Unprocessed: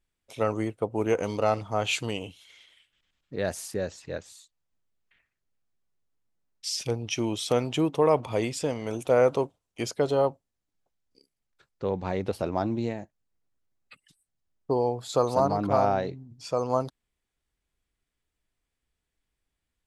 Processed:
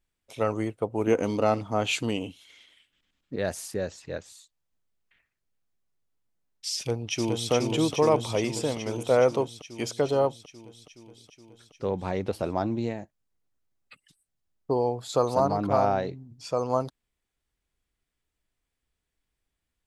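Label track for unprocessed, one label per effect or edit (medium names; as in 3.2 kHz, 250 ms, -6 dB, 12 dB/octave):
1.070000	3.360000	peaking EQ 260 Hz +8.5 dB
6.760000	7.510000	echo throw 420 ms, feedback 75%, level -3 dB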